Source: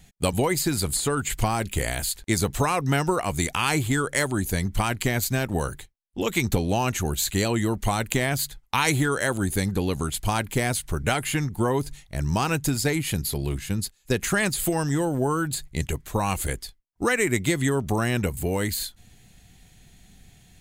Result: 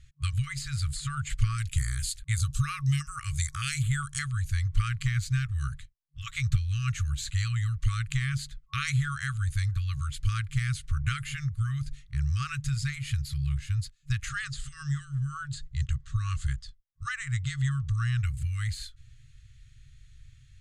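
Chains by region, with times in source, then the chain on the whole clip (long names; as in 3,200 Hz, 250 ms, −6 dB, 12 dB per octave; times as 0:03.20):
0:01.58–0:04.19: high-shelf EQ 5,600 Hz +12 dB + notch on a step sequencer 4.9 Hz 740–7,400 Hz
0:14.29–0:18.19: low-pass filter 8,200 Hz 24 dB per octave + parametric band 2,300 Hz −9 dB 0.27 octaves
whole clip: brick-wall band-stop 150–1,100 Hz; Bessel low-pass filter 6,600 Hz, order 4; low-shelf EQ 330 Hz +10 dB; level −7.5 dB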